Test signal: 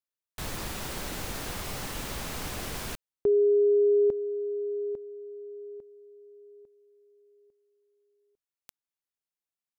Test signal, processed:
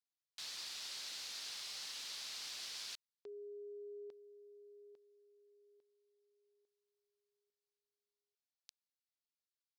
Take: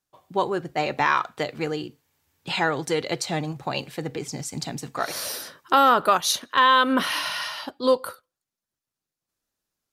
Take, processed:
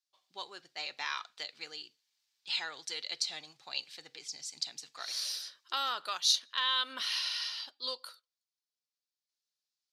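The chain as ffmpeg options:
ffmpeg -i in.wav -af "bandpass=frequency=4500:width_type=q:width=2.2:csg=0" out.wav

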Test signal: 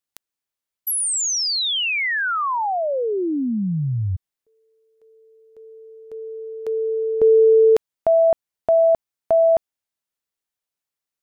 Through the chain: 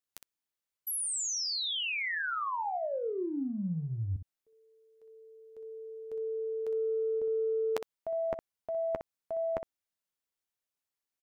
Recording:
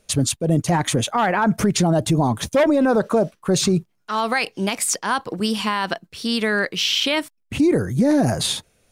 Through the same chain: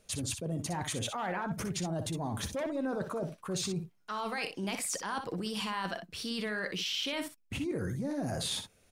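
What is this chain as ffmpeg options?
ffmpeg -i in.wav -af "areverse,acompressor=threshold=-28dB:ratio=16:attack=5.2:release=50:knee=6:detection=peak,areverse,aecho=1:1:11|61:0.224|0.376,volume=-5dB" out.wav

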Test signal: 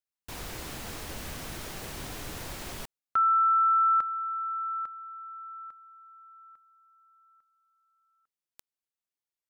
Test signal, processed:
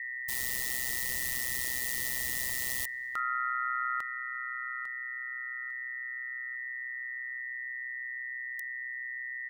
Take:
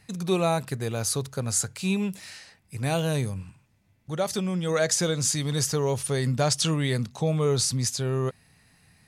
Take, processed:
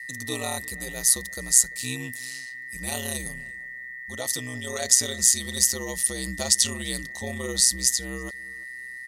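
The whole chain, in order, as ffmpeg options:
ffmpeg -i in.wav -filter_complex "[0:a]equalizer=frequency=1700:width_type=o:width=0.75:gain=-10.5,aeval=exprs='val(0)+0.0224*sin(2*PI*1900*n/s)':channel_layout=same,aeval=exprs='val(0)*sin(2*PI*63*n/s)':channel_layout=same,crystalizer=i=7:c=0,asplit=2[link_01][link_02];[link_02]adelay=342,lowpass=frequency=1900:poles=1,volume=-21.5dB,asplit=2[link_03][link_04];[link_04]adelay=342,lowpass=frequency=1900:poles=1,volume=0.32[link_05];[link_03][link_05]amix=inputs=2:normalize=0[link_06];[link_01][link_06]amix=inputs=2:normalize=0,volume=-6.5dB" out.wav

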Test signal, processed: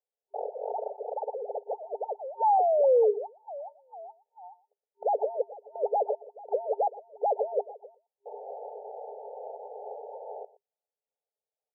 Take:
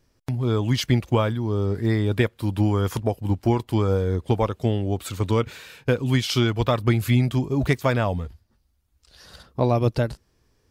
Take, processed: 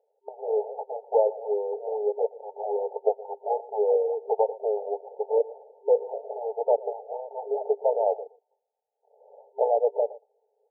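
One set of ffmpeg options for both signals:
ffmpeg -i in.wav -filter_complex "[0:a]asplit=2[link_01][link_02];[link_02]acrusher=samples=37:mix=1:aa=0.000001:lfo=1:lforange=37:lforate=2.3,volume=-6dB[link_03];[link_01][link_03]amix=inputs=2:normalize=0,acontrast=64,aecho=1:1:119:0.106,afftfilt=real='re*between(b*sr/4096,400,910)':imag='im*between(b*sr/4096,400,910)':win_size=4096:overlap=0.75,volume=-3.5dB" out.wav

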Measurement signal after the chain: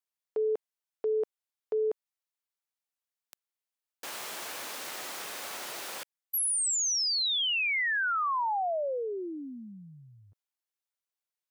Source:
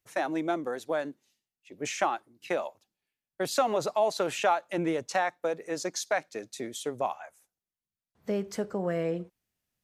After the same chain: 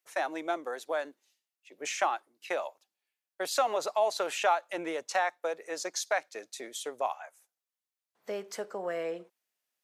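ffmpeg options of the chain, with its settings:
ffmpeg -i in.wav -af "highpass=520" out.wav

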